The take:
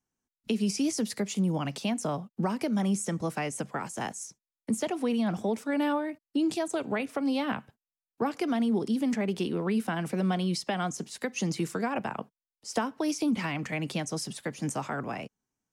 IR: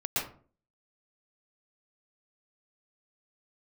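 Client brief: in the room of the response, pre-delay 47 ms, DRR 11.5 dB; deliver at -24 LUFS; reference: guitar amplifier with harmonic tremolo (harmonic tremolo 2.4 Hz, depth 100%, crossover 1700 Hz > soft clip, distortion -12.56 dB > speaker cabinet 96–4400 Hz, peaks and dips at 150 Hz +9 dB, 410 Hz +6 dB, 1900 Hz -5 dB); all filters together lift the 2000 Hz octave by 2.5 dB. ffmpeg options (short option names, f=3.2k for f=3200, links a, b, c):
-filter_complex "[0:a]equalizer=f=2k:t=o:g=6,asplit=2[a][b];[1:a]atrim=start_sample=2205,adelay=47[c];[b][c]afir=irnorm=-1:irlink=0,volume=-19dB[d];[a][d]amix=inputs=2:normalize=0,acrossover=split=1700[e][f];[e]aeval=exprs='val(0)*(1-1/2+1/2*cos(2*PI*2.4*n/s))':c=same[g];[f]aeval=exprs='val(0)*(1-1/2-1/2*cos(2*PI*2.4*n/s))':c=same[h];[g][h]amix=inputs=2:normalize=0,asoftclip=threshold=-27.5dB,highpass=96,equalizer=f=150:t=q:w=4:g=9,equalizer=f=410:t=q:w=4:g=6,equalizer=f=1.9k:t=q:w=4:g=-5,lowpass=f=4.4k:w=0.5412,lowpass=f=4.4k:w=1.3066,volume=11.5dB"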